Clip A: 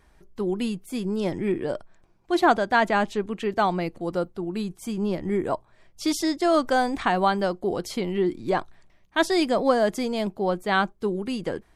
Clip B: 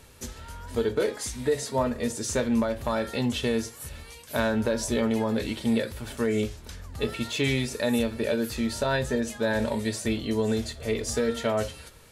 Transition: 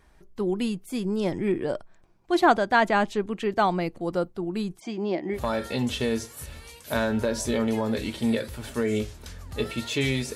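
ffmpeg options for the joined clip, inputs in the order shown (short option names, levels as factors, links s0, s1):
-filter_complex "[0:a]asplit=3[s0][s1][s2];[s0]afade=t=out:st=4.79:d=0.02[s3];[s1]highpass=260,equalizer=f=330:t=q:w=4:g=7,equalizer=f=480:t=q:w=4:g=-3,equalizer=f=710:t=q:w=4:g=8,equalizer=f=1300:t=q:w=4:g=-6,equalizer=f=2100:t=q:w=4:g=6,lowpass=f=5700:w=0.5412,lowpass=f=5700:w=1.3066,afade=t=in:st=4.79:d=0.02,afade=t=out:st=5.39:d=0.02[s4];[s2]afade=t=in:st=5.39:d=0.02[s5];[s3][s4][s5]amix=inputs=3:normalize=0,apad=whole_dur=10.35,atrim=end=10.35,atrim=end=5.39,asetpts=PTS-STARTPTS[s6];[1:a]atrim=start=2.74:end=7.78,asetpts=PTS-STARTPTS[s7];[s6][s7]acrossfade=d=0.08:c1=tri:c2=tri"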